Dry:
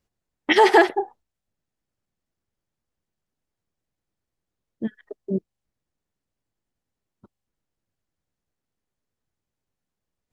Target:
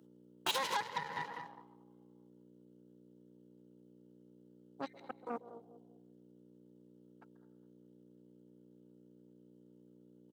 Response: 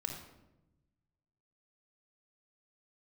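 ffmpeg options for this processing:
-filter_complex "[0:a]asplit=3[s0][s1][s2];[s0]bandpass=f=730:t=q:w=8,volume=1[s3];[s1]bandpass=f=1090:t=q:w=8,volume=0.501[s4];[s2]bandpass=f=2440:t=q:w=8,volume=0.355[s5];[s3][s4][s5]amix=inputs=3:normalize=0,highshelf=f=3100:g=6.5,aecho=1:1:203|406|609:0.168|0.0504|0.0151,asplit=2[s6][s7];[1:a]atrim=start_sample=2205,lowpass=5000,adelay=132[s8];[s7][s8]afir=irnorm=-1:irlink=0,volume=0.211[s9];[s6][s9]amix=inputs=2:normalize=0,asetrate=53981,aresample=44100,atempo=0.816958,aeval=exprs='val(0)+0.00398*(sin(2*PI*60*n/s)+sin(2*PI*2*60*n/s)/2+sin(2*PI*3*60*n/s)/3+sin(2*PI*4*60*n/s)/4+sin(2*PI*5*60*n/s)/5)':c=same,acompressor=threshold=0.00794:ratio=12,aemphasis=mode=production:type=riaa,aeval=exprs='0.0251*(cos(1*acos(clip(val(0)/0.0251,-1,1)))-cos(1*PI/2))+0.000708*(cos(7*acos(clip(val(0)/0.0251,-1,1)))-cos(7*PI/2))+0.00562*(cos(8*acos(clip(val(0)/0.0251,-1,1)))-cos(8*PI/2))':c=same,highpass=f=150:w=0.5412,highpass=f=150:w=1.3066,volume=2.51"

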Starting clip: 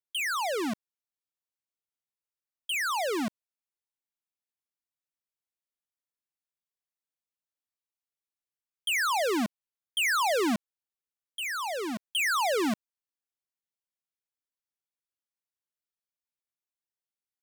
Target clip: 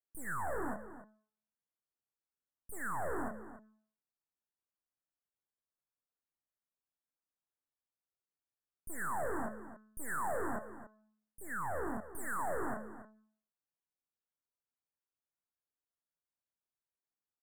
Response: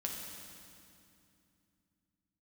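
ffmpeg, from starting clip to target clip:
-filter_complex "[0:a]highshelf=f=3000:g=-11.5,bandreject=f=215.6:t=h:w=4,bandreject=f=431.2:t=h:w=4,bandreject=f=646.8:t=h:w=4,bandreject=f=862.4:t=h:w=4,bandreject=f=1078:t=h:w=4,bandreject=f=1293.6:t=h:w=4,bandreject=f=1509.2:t=h:w=4,bandreject=f=1724.8:t=h:w=4,bandreject=f=1940.4:t=h:w=4,bandreject=f=2156:t=h:w=4,bandreject=f=2371.6:t=h:w=4,bandreject=f=2587.2:t=h:w=4,bandreject=f=2802.8:t=h:w=4,bandreject=f=3018.4:t=h:w=4,bandreject=f=3234:t=h:w=4,bandreject=f=3449.6:t=h:w=4,bandreject=f=3665.2:t=h:w=4,bandreject=f=3880.8:t=h:w=4,bandreject=f=4096.4:t=h:w=4,bandreject=f=4312:t=h:w=4,bandreject=f=4527.6:t=h:w=4,bandreject=f=4743.2:t=h:w=4,bandreject=f=4958.8:t=h:w=4,bandreject=f=5174.4:t=h:w=4,bandreject=f=5390:t=h:w=4,bandreject=f=5605.6:t=h:w=4,bandreject=f=5821.2:t=h:w=4,bandreject=f=6036.8:t=h:w=4,bandreject=f=6252.4:t=h:w=4,bandreject=f=6468:t=h:w=4,bandreject=f=6683.6:t=h:w=4,bandreject=f=6899.2:t=h:w=4,bandreject=f=7114.8:t=h:w=4,bandreject=f=7330.4:t=h:w=4,bandreject=f=7546:t=h:w=4,bandreject=f=7761.6:t=h:w=4,acrossover=split=430|750|5100[s0][s1][s2][s3];[s0]acompressor=threshold=0.01:ratio=6[s4];[s3]alimiter=level_in=12.6:limit=0.0631:level=0:latency=1,volume=0.0794[s5];[s4][s1][s2][s5]amix=inputs=4:normalize=0,flanger=delay=22.5:depth=7.6:speed=0.21,aeval=exprs='0.0794*(cos(1*acos(clip(val(0)/0.0794,-1,1)))-cos(1*PI/2))+0.02*(cos(6*acos(clip(val(0)/0.0794,-1,1)))-cos(6*PI/2))':c=same,asoftclip=type=hard:threshold=0.0211,asuperstop=centerf=3800:order=20:qfactor=0.67,asplit=2[s6][s7];[s7]adelay=279.9,volume=0.224,highshelf=f=4000:g=-6.3[s8];[s6][s8]amix=inputs=2:normalize=0,volume=1.33"

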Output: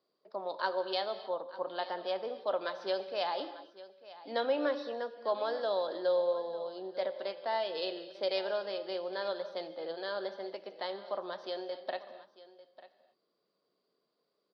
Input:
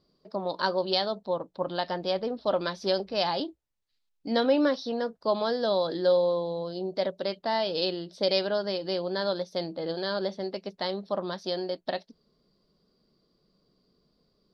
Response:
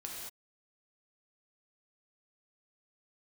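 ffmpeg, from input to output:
-filter_complex "[0:a]highpass=100,acrossover=split=360 4200:gain=0.0891 1 0.0891[s0][s1][s2];[s0][s1][s2]amix=inputs=3:normalize=0,aecho=1:1:896:0.133,asplit=2[s3][s4];[1:a]atrim=start_sample=2205,asetrate=36603,aresample=44100[s5];[s4][s5]afir=irnorm=-1:irlink=0,volume=0.355[s6];[s3][s6]amix=inputs=2:normalize=0,volume=0.473"

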